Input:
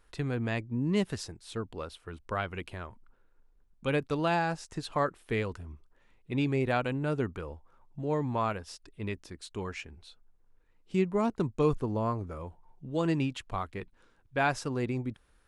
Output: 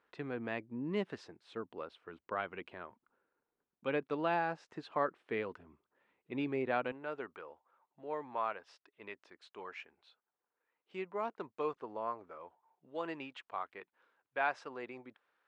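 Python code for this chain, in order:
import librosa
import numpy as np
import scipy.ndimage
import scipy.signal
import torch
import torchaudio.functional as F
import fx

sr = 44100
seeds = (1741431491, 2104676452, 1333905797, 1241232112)

y = fx.bandpass_edges(x, sr, low_hz=fx.steps((0.0, 270.0), (6.92, 580.0)), high_hz=2600.0)
y = y * librosa.db_to_amplitude(-4.0)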